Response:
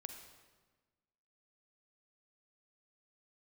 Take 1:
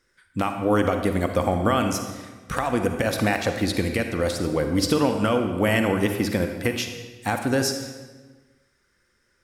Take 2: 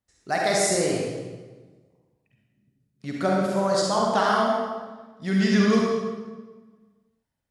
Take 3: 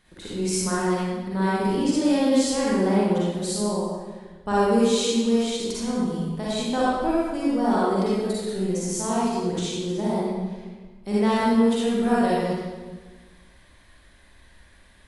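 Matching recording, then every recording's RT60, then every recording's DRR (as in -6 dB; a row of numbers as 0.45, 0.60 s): 1; 1.3, 1.3, 1.3 s; 5.5, -3.0, -8.0 dB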